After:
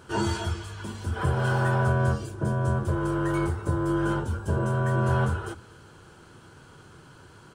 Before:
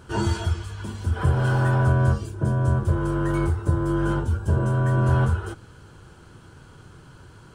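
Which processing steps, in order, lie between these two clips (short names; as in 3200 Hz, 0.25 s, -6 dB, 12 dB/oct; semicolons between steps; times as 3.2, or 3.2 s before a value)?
low shelf 97 Hz -11 dB; notches 60/120/180/240/300 Hz; echo 0.239 s -22 dB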